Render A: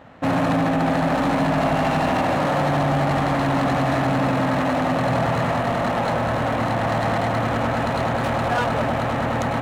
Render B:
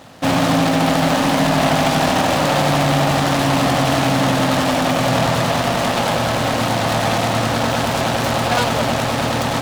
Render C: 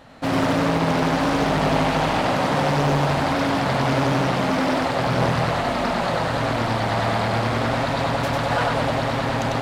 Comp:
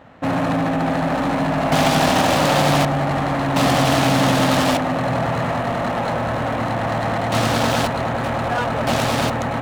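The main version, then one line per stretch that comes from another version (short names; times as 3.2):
A
1.72–2.85 from B
3.56–4.77 from B
7.32–7.87 from B
8.87–9.3 from B
not used: C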